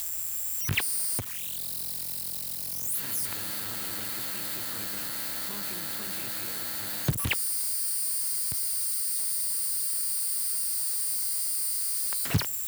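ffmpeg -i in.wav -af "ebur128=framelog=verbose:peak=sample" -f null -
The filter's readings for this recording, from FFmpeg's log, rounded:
Integrated loudness:
  I:         -27.5 LUFS
  Threshold: -37.5 LUFS
Loudness range:
  LRA:         4.6 LU
  Threshold: -47.7 LUFS
  LRA low:   -30.3 LUFS
  LRA high:  -25.8 LUFS
Sample peak:
  Peak:      -11.4 dBFS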